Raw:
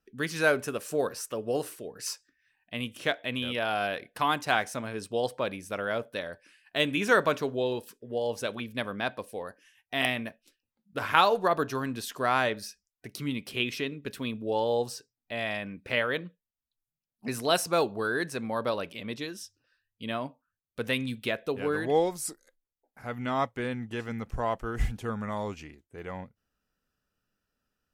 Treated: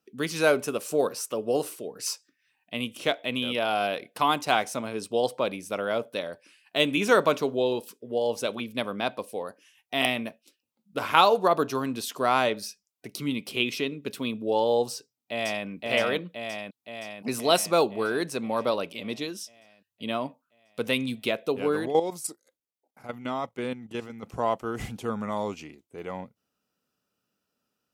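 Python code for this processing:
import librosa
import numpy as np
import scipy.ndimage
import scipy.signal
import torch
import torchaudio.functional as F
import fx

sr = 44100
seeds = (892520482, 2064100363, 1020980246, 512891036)

y = fx.echo_throw(x, sr, start_s=14.93, length_s=0.73, ms=520, feedback_pct=65, wet_db=-1.5)
y = fx.level_steps(y, sr, step_db=11, at=(21.86, 24.23))
y = scipy.signal.sosfilt(scipy.signal.butter(2, 160.0, 'highpass', fs=sr, output='sos'), y)
y = fx.peak_eq(y, sr, hz=1700.0, db=-9.0, octaves=0.42)
y = y * librosa.db_to_amplitude(4.0)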